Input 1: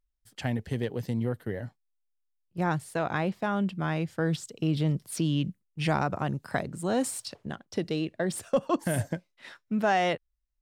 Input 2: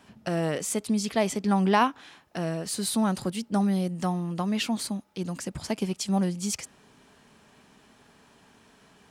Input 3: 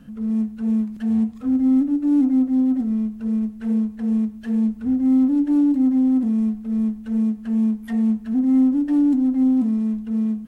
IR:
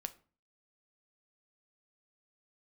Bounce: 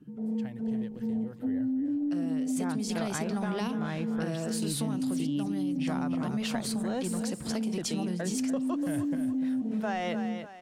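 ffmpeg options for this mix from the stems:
-filter_complex "[0:a]volume=0.631,afade=t=in:st=1.31:d=0.42:silence=0.316228,asplit=3[s0][s1][s2];[s1]volume=0.299[s3];[1:a]acrossover=split=400|3000[s4][s5][s6];[s5]acompressor=threshold=0.02:ratio=6[s7];[s4][s7][s6]amix=inputs=3:normalize=0,adelay=1850,volume=0.75,asplit=2[s8][s9];[s9]volume=0.668[s10];[2:a]afwtdn=0.0355,aecho=1:1:6.6:0.56,alimiter=limit=0.126:level=0:latency=1,volume=0.75,asplit=2[s11][s12];[s12]volume=0.299[s13];[s2]apad=whole_len=483009[s14];[s8][s14]sidechaingate=range=0.0224:threshold=0.00316:ratio=16:detection=peak[s15];[s15][s11]amix=inputs=2:normalize=0,highpass=f=150:p=1,alimiter=level_in=1.06:limit=0.0631:level=0:latency=1,volume=0.944,volume=1[s16];[3:a]atrim=start_sample=2205[s17];[s10][s13]amix=inputs=2:normalize=0[s18];[s18][s17]afir=irnorm=-1:irlink=0[s19];[s3]aecho=0:1:294|588|882|1176|1470:1|0.33|0.109|0.0359|0.0119[s20];[s0][s16][s19][s20]amix=inputs=4:normalize=0,acompressor=threshold=0.0398:ratio=4"

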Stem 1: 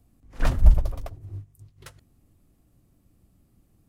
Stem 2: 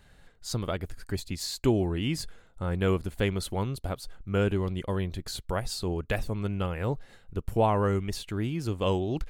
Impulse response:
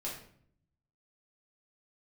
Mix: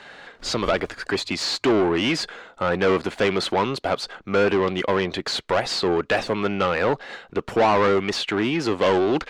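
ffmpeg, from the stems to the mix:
-filter_complex "[0:a]acrusher=samples=39:mix=1:aa=0.000001,volume=0.237[s0];[1:a]asplit=2[s1][s2];[s2]highpass=f=720:p=1,volume=25.1,asoftclip=type=tanh:threshold=0.282[s3];[s1][s3]amix=inputs=2:normalize=0,lowpass=f=2700:p=1,volume=0.501,volume=1.12[s4];[s0][s4]amix=inputs=2:normalize=0,acrossover=split=190 7200:gain=0.251 1 0.126[s5][s6][s7];[s5][s6][s7]amix=inputs=3:normalize=0"

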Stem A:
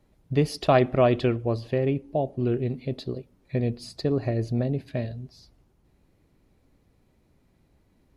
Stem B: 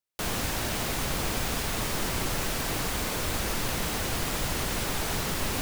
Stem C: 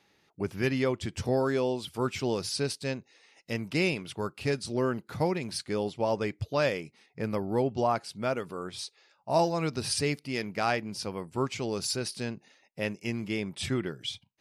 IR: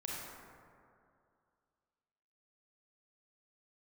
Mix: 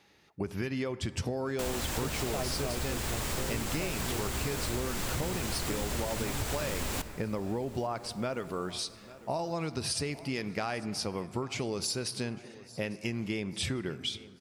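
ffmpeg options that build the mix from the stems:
-filter_complex "[0:a]adelay=1650,volume=0.266[s0];[1:a]equalizer=f=7600:t=o:w=0.26:g=5,adelay=1400,volume=0.75,asplit=3[s1][s2][s3];[s2]volume=0.211[s4];[s3]volume=0.0841[s5];[2:a]acompressor=threshold=0.0355:ratio=6,volume=1.33,asplit=3[s6][s7][s8];[s7]volume=0.158[s9];[s8]volume=0.0841[s10];[3:a]atrim=start_sample=2205[s11];[s4][s9]amix=inputs=2:normalize=0[s12];[s12][s11]afir=irnorm=-1:irlink=0[s13];[s5][s10]amix=inputs=2:normalize=0,aecho=0:1:848|1696|2544|3392|4240|5088|5936:1|0.5|0.25|0.125|0.0625|0.0312|0.0156[s14];[s0][s1][s6][s13][s14]amix=inputs=5:normalize=0,equalizer=f=67:w=3.8:g=9.5,acompressor=threshold=0.0355:ratio=6"

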